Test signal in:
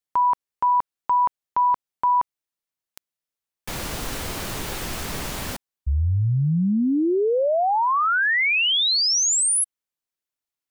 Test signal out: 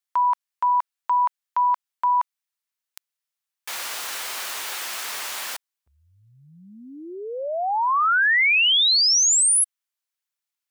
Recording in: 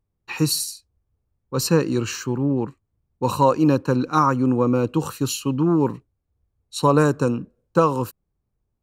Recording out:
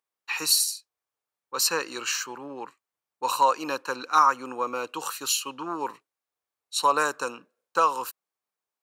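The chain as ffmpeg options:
-af "highpass=1000,volume=1.33"

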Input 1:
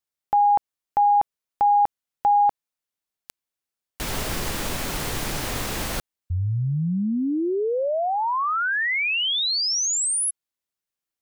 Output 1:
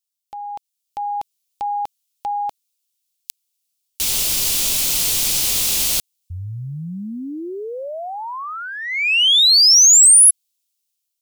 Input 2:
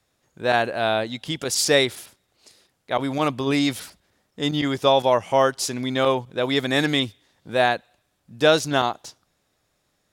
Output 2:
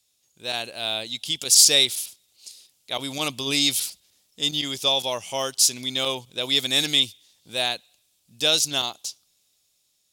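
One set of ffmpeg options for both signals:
-af "dynaudnorm=f=350:g=5:m=2.82,aexciter=amount=7.5:drive=4.8:freq=2500,volume=0.2"

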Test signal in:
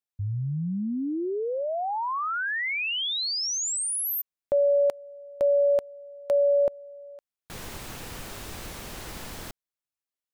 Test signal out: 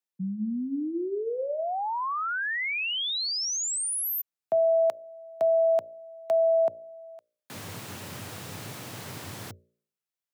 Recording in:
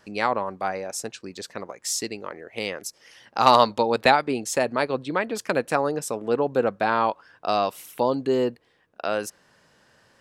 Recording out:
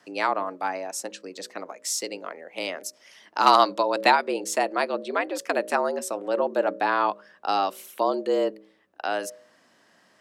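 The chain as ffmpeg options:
-af "bandreject=f=58.28:t=h:w=4,bandreject=f=116.56:t=h:w=4,bandreject=f=174.84:t=h:w=4,bandreject=f=233.12:t=h:w=4,bandreject=f=291.4:t=h:w=4,bandreject=f=349.68:t=h:w=4,bandreject=f=407.96:t=h:w=4,bandreject=f=466.24:t=h:w=4,bandreject=f=524.52:t=h:w=4,afreqshift=88,volume=0.891"

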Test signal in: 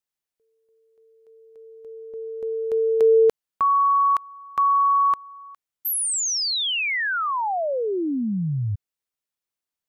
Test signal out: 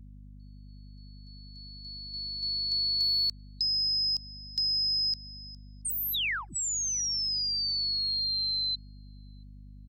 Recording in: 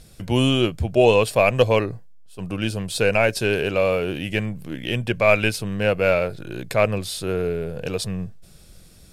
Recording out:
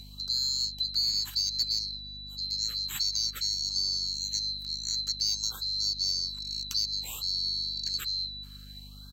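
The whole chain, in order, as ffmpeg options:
-filter_complex "[0:a]afftfilt=real='real(if(lt(b,736),b+184*(1-2*mod(floor(b/184),2)),b),0)':imag='imag(if(lt(b,736),b+184*(1-2*mod(floor(b/184),2)),b),0)':win_size=2048:overlap=0.75,highshelf=f=4300:g=-6.5,aeval=exprs='val(0)+0.0141*(sin(2*PI*50*n/s)+sin(2*PI*2*50*n/s)/2+sin(2*PI*3*50*n/s)/3+sin(2*PI*4*50*n/s)/4+sin(2*PI*5*50*n/s)/5)':c=same,bandreject=f=620:w=12,asoftclip=type=tanh:threshold=0.355,tremolo=f=110:d=0.182,acrossover=split=180|1500[s0][s1][s2];[s0]acompressor=threshold=0.00355:ratio=4[s3];[s1]acompressor=threshold=0.00141:ratio=8[s4];[s2]acompressor=threshold=0.0398:ratio=3[s5];[s3][s4][s5]amix=inputs=3:normalize=0,asplit=2[s6][s7];[s7]adelay=678,lowpass=f=900:p=1,volume=0.0668,asplit=2[s8][s9];[s9]adelay=678,lowpass=f=900:p=1,volume=0.46,asplit=2[s10][s11];[s11]adelay=678,lowpass=f=900:p=1,volume=0.46[s12];[s8][s10][s12]amix=inputs=3:normalize=0[s13];[s6][s13]amix=inputs=2:normalize=0,afftfilt=real='re*(1-between(b*sr/1024,530*pow(2400/530,0.5+0.5*sin(2*PI*0.57*pts/sr))/1.41,530*pow(2400/530,0.5+0.5*sin(2*PI*0.57*pts/sr))*1.41))':imag='im*(1-between(b*sr/1024,530*pow(2400/530,0.5+0.5*sin(2*PI*0.57*pts/sr))/1.41,530*pow(2400/530,0.5+0.5*sin(2*PI*0.57*pts/sr))*1.41))':win_size=1024:overlap=0.75"

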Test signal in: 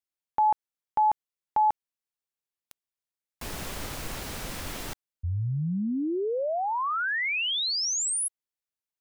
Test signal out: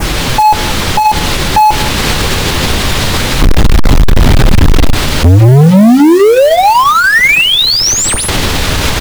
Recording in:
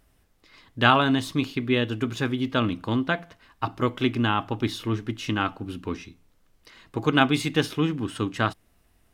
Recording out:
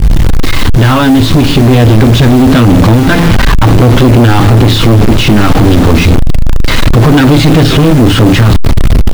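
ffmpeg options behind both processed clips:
-af "aeval=exprs='val(0)+0.5*0.126*sgn(val(0))':c=same,acrusher=bits=5:mix=0:aa=0.000001,adynamicequalizer=threshold=0.0141:dfrequency=3800:dqfactor=1.5:tfrequency=3800:tqfactor=1.5:attack=5:release=100:ratio=0.4:range=2.5:mode=boostabove:tftype=bell,acompressor=threshold=0.0708:ratio=2.5:attack=83:release=38:knee=1:detection=rms,bandreject=f=690:w=23,aecho=1:1:179:0.075,flanger=delay=6:depth=9.1:regen=-48:speed=0.27:shape=triangular,dynaudnorm=f=990:g=3:m=1.5,aemphasis=mode=reproduction:type=riaa,volume=8.41,asoftclip=hard,volume=0.119,acrusher=bits=4:mode=log:mix=0:aa=0.000001,alimiter=level_in=14.1:limit=0.891:release=50:level=0:latency=1,volume=0.891"

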